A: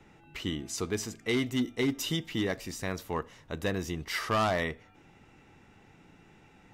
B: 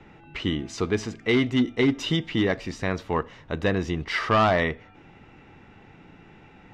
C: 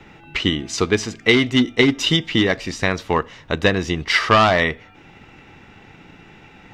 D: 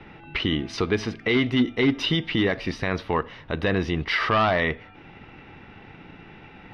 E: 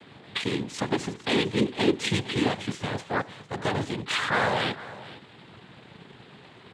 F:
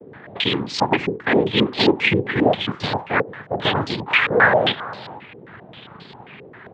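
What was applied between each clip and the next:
low-pass 3.6 kHz 12 dB/octave; trim +7.5 dB
treble shelf 2.2 kHz +9 dB; transient shaper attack +4 dB, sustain -1 dB; trim +3.5 dB
peak limiter -12.5 dBFS, peak gain reduction 11 dB; boxcar filter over 6 samples
noise-vocoded speech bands 6; delay 455 ms -17 dB; trim -3 dB
step-sequenced low-pass 7.5 Hz 460–4600 Hz; trim +5 dB

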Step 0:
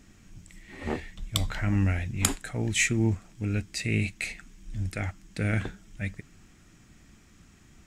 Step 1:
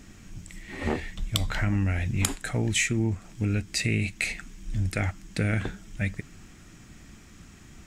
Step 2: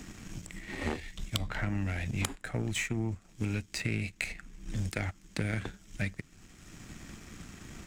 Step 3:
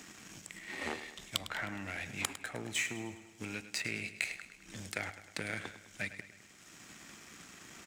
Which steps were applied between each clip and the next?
compression 5:1, threshold -29 dBFS, peak gain reduction 11 dB; trim +6.5 dB
power-law waveshaper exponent 1.4; three bands compressed up and down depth 70%
high-pass 650 Hz 6 dB/octave; on a send: feedback delay 104 ms, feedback 55%, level -13 dB

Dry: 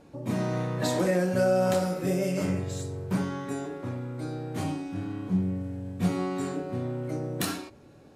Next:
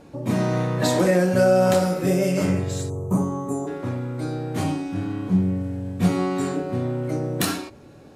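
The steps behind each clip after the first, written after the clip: time-frequency box 2.90–3.67 s, 1.3–5.9 kHz -19 dB; trim +6.5 dB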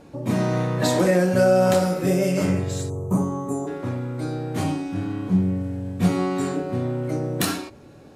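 no audible change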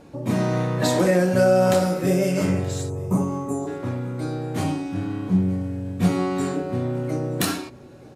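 delay 926 ms -22.5 dB

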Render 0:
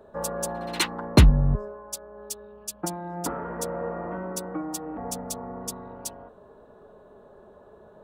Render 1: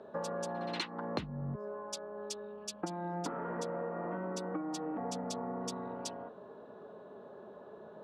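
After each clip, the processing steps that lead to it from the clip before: Chebyshev band-pass 180–4400 Hz, order 2; compression 16:1, threshold -35 dBFS, peak gain reduction 23.5 dB; trim +1 dB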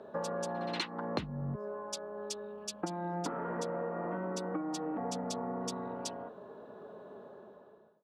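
fade out at the end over 0.89 s; trim +1.5 dB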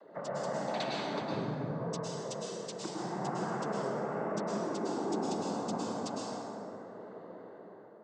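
noise-vocoded speech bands 16; reverberation RT60 2.7 s, pre-delay 98 ms, DRR -5.5 dB; trim -4.5 dB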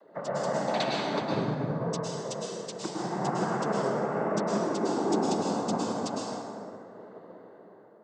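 upward expansion 1.5:1, over -49 dBFS; trim +8 dB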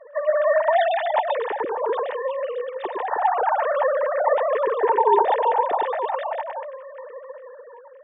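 formants replaced by sine waves; small resonant body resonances 900/1800 Hz, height 13 dB, ringing for 25 ms; trim +5.5 dB

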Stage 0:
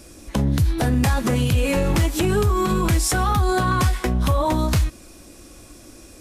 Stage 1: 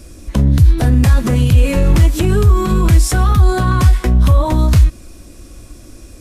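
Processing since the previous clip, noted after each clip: bass shelf 140 Hz +12 dB; band-stop 820 Hz, Q 15; trim +1.5 dB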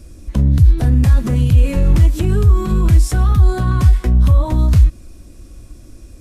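bass shelf 250 Hz +7.5 dB; trim -7.5 dB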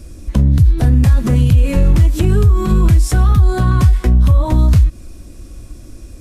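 compression, threshold -10 dBFS, peak gain reduction 6 dB; trim +4 dB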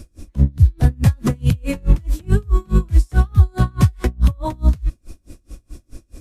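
logarithmic tremolo 4.7 Hz, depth 33 dB; trim +1 dB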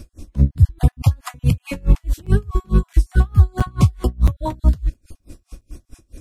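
random holes in the spectrogram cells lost 20%; crackling interface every 0.67 s, samples 256, zero, from 0.92 s

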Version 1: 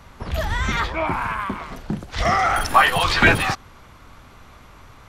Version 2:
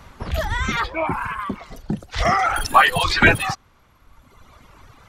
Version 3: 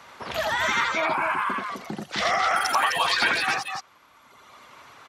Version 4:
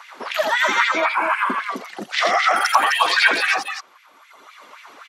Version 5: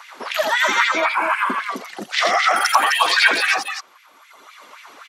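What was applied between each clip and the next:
reverb removal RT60 1.6 s; trim +1.5 dB
frequency weighting A; compression 6:1, threshold -22 dBFS, peak gain reduction 13.5 dB; on a send: loudspeakers at several distances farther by 29 m -2 dB, 88 m -4 dB
LFO high-pass sine 3.8 Hz 250–2400 Hz; trim +3 dB
treble shelf 4.4 kHz +5 dB

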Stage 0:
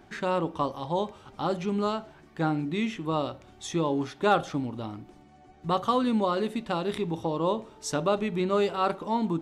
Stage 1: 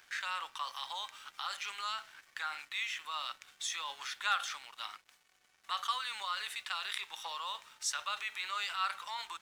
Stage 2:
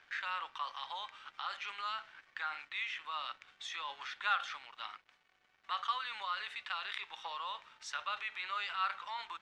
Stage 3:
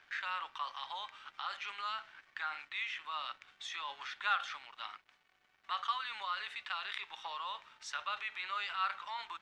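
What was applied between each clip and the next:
high-pass 1.4 kHz 24 dB/octave; in parallel at -1.5 dB: compressor with a negative ratio -48 dBFS, ratio -1; on the sum: crossover distortion -59 dBFS
low-pass 3.1 kHz 12 dB/octave
band-stop 500 Hz, Q 12

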